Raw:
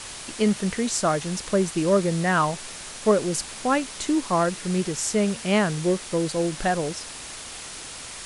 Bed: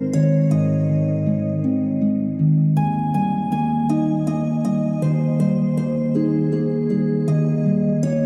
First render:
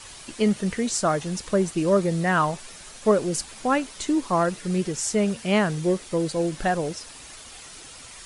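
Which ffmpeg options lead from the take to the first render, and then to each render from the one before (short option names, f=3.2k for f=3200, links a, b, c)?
-af "afftdn=nr=8:nf=-38"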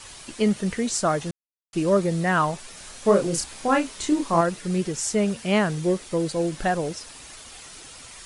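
-filter_complex "[0:a]asettb=1/sr,asplit=3[a][b][c];[a]atrim=end=2.744[d];[b]atrim=start=2.74:end=4.41,asetpts=PTS-STARTPTS,afade=t=in:d=0.004:c=qsin,afade=t=out:st=1.666:d=0.004:c=qsin,asplit=2[e][f];[f]adelay=30,volume=-4dB[g];[e][g]amix=inputs=2:normalize=0,atrim=end_sample=73647[h];[c]atrim=start=4.406[i];[d][h]acrossfade=d=0.004:c1=hsin:c2=qsin[j];[j][i]acrossfade=d=0.004:c1=qsin:c2=hsin,asplit=3[k][l][m];[k]atrim=end=1.31,asetpts=PTS-STARTPTS,afade=t=out:st=1.306:d=0.004:c=hsin[n];[l]atrim=start=1.31:end=1.73,asetpts=PTS-STARTPTS,volume=0[o];[m]atrim=start=1.73,asetpts=PTS-STARTPTS,afade=t=in:d=0.004:c=hsin[p];[n][o][p]concat=n=3:v=0:a=1"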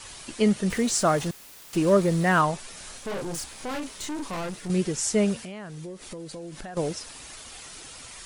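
-filter_complex "[0:a]asettb=1/sr,asplit=3[a][b][c];[a]atrim=end=0.704[d];[b]atrim=start=0.7:end=2.41,asetpts=PTS-STARTPTS,afade=t=in:d=0.004:c=qsin,afade=t=out:st=1.706:d=0.004:c=qsin,aeval=exprs='val(0)+0.5*0.0168*sgn(val(0))':c=same[e];[c]atrim=start=2.406[f];[d][e]acrossfade=d=0.004:c1=hsin:c2=qsin[g];[g][f]acrossfade=d=0.004:c1=qsin:c2=hsin,asettb=1/sr,asplit=3[h][i][j];[h]atrim=end=2.974[k];[i]atrim=start=2.97:end=4.7,asetpts=PTS-STARTPTS,afade=t=in:d=0.004:c=qsin,afade=t=out:st=1.726:d=0.004:c=qsin,aeval=exprs='(tanh(31.6*val(0)+0.4)-tanh(0.4))/31.6':c=same[l];[j]atrim=start=4.696[m];[k][l]acrossfade=d=0.004:c1=hsin:c2=qsin[n];[n][m]acrossfade=d=0.004:c1=qsin:c2=hsin,asettb=1/sr,asplit=3[o][p][q];[o]atrim=end=5.444[r];[p]atrim=start=5.44:end=6.77,asetpts=PTS-STARTPTS,afade=t=in:d=0.004:c=qsin,afade=t=out:st=1.326:d=0.004:c=qsin,acompressor=threshold=-35dB:ratio=12:attack=3.2:release=140:knee=1:detection=peak[s];[q]atrim=start=6.766[t];[r][s]acrossfade=d=0.004:c1=hsin:c2=qsin[u];[u][t]acrossfade=d=0.004:c1=qsin:c2=hsin"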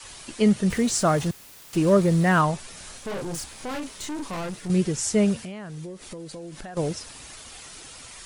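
-af "adynamicequalizer=threshold=0.01:dfrequency=100:dqfactor=0.72:tfrequency=100:tqfactor=0.72:attack=5:release=100:ratio=0.375:range=3.5:mode=boostabove:tftype=bell"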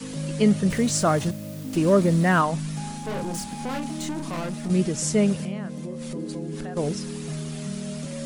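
-filter_complex "[1:a]volume=-14dB[a];[0:a][a]amix=inputs=2:normalize=0"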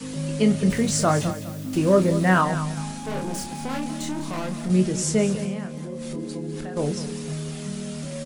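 -filter_complex "[0:a]asplit=2[a][b];[b]adelay=27,volume=-8dB[c];[a][c]amix=inputs=2:normalize=0,aecho=1:1:203|406|609:0.237|0.064|0.0173"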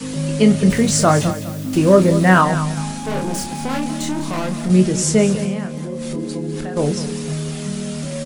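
-af "volume=6.5dB,alimiter=limit=-1dB:level=0:latency=1"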